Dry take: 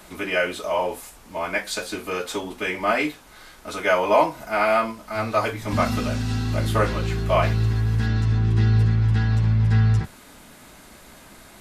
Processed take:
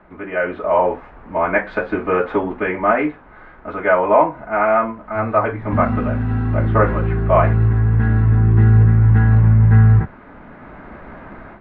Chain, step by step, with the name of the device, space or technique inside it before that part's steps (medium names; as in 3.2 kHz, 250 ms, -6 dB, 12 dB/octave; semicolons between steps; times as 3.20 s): action camera in a waterproof case (low-pass 1.8 kHz 24 dB/octave; level rider gain up to 13 dB; trim -1 dB; AAC 96 kbps 48 kHz)